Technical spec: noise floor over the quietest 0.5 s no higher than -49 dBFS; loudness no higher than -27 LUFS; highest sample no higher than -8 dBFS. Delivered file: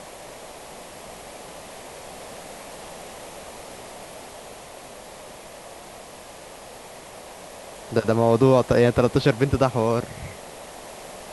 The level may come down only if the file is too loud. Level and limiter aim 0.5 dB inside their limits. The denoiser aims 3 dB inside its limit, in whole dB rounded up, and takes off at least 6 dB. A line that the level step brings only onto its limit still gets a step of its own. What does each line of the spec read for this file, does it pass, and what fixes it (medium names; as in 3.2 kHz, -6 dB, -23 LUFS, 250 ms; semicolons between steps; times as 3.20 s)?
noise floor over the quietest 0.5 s -42 dBFS: fail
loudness -20.5 LUFS: fail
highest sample -5.5 dBFS: fail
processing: noise reduction 6 dB, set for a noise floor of -42 dBFS; trim -7 dB